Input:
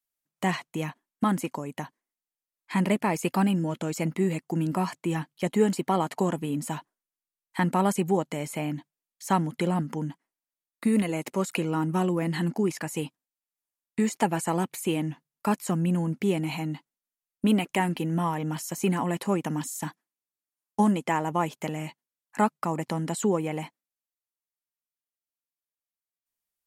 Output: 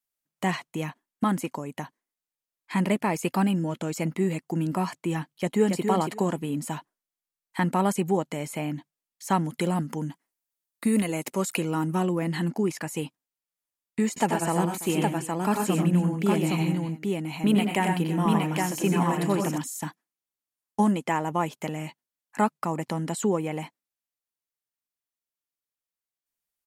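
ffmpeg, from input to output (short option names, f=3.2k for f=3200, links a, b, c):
-filter_complex "[0:a]asplit=2[a][b];[b]afade=t=in:st=5.32:d=0.01,afade=t=out:st=5.82:d=0.01,aecho=0:1:280|560|840:0.562341|0.0843512|0.0126527[c];[a][c]amix=inputs=2:normalize=0,asettb=1/sr,asplit=3[d][e][f];[d]atrim=end=9.454[g];[e]atrim=start=9.45:end=11.95,asetpts=PTS-STARTPTS,afade=t=in:d=0.004:c=qsin,afade=t=out:st=2.496:d=0.004:c=qsin,highshelf=f=5.5k:g=7.5[h];[f]atrim=start=11.946[i];[g][h]acrossfade=d=0.004:c1=hsin:c2=qsin[j];[j][i]acrossfade=d=0.004:c1=qsin:c2=hsin,asettb=1/sr,asplit=3[k][l][m];[k]atrim=end=14.084[n];[l]atrim=start=14.08:end=19.58,asetpts=PTS-STARTPTS,afade=t=in:d=0.004:c=qsin,afade=t=out:st=5.496:d=0.004:c=qsin,aecho=1:1:83|95|124|335|815:0.335|0.501|0.316|0.133|0.708,atrim=end_sample=242550[o];[m]atrim=start=19.576[p];[n][o]acrossfade=d=0.004:c1=hsin:c2=qsin[q];[q][p]acrossfade=d=0.004:c1=qsin:c2=hsin"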